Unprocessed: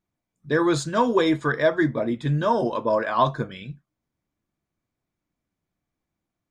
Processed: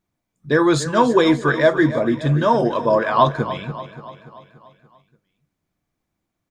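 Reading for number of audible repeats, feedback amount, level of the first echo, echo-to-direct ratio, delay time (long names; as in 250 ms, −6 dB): 5, 55%, −13.5 dB, −12.0 dB, 289 ms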